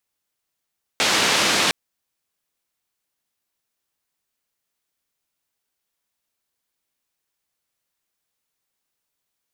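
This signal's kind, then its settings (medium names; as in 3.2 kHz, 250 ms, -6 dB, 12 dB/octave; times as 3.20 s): noise band 170–4800 Hz, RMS -19 dBFS 0.71 s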